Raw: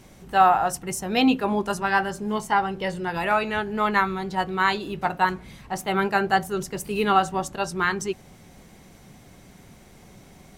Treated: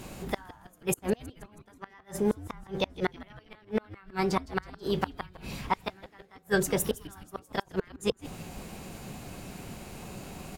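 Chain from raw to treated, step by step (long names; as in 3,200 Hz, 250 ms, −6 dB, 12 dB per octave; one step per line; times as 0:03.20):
in parallel at +0.5 dB: downward compressor 6 to 1, threshold −32 dBFS, peak gain reduction 18.5 dB
on the sum: gate with flip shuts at −15 dBFS, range −36 dB
echo with shifted repeats 161 ms, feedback 58%, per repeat −120 Hz, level −17 dB
formants moved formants +3 semitones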